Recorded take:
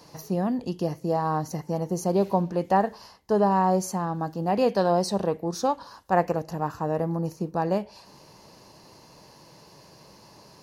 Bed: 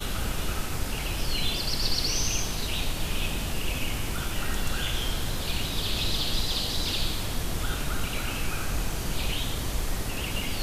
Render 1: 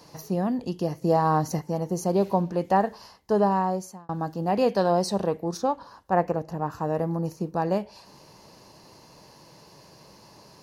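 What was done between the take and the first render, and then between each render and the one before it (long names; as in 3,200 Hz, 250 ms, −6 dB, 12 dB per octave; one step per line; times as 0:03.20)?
0:01.02–0:01.59: clip gain +4 dB
0:03.44–0:04.09: fade out
0:05.57–0:06.72: high-shelf EQ 2,400 Hz −8.5 dB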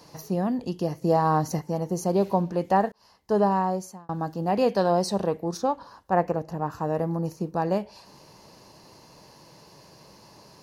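0:02.92–0:03.36: fade in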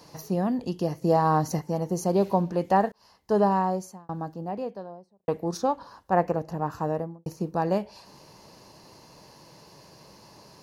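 0:03.55–0:05.28: fade out and dull
0:06.83–0:07.26: fade out and dull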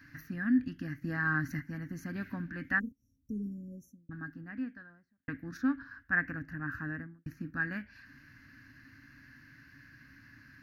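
drawn EQ curve 120 Hz 0 dB, 190 Hz −14 dB, 270 Hz +6 dB, 390 Hz −29 dB, 940 Hz −26 dB, 1,600 Hz +13 dB, 3,300 Hz −14 dB, 6,100 Hz −18 dB, 8,700 Hz −27 dB, 13,000 Hz −10 dB
0:02.79–0:04.11: time-frequency box erased 560–5,500 Hz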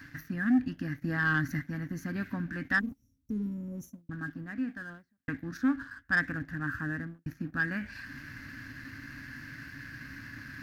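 reversed playback
upward compression, threshold −38 dBFS
reversed playback
leveller curve on the samples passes 1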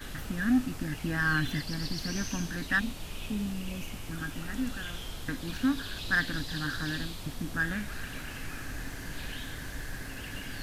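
mix in bed −11 dB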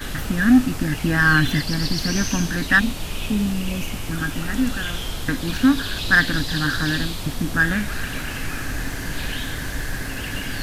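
level +11.5 dB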